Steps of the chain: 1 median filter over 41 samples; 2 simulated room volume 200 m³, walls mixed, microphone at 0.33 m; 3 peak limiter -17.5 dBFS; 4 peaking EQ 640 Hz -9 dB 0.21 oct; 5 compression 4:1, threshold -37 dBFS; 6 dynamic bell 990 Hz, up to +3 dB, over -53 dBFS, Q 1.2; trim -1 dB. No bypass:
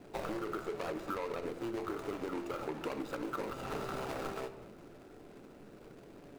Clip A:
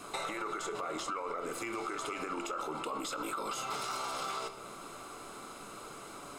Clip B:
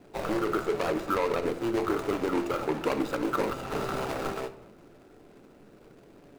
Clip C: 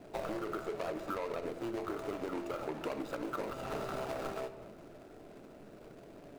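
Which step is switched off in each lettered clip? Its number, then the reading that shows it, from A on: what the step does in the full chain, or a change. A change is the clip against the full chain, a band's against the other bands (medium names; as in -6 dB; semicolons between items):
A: 1, 8 kHz band +12.5 dB; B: 5, mean gain reduction 6.0 dB; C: 4, 500 Hz band +1.5 dB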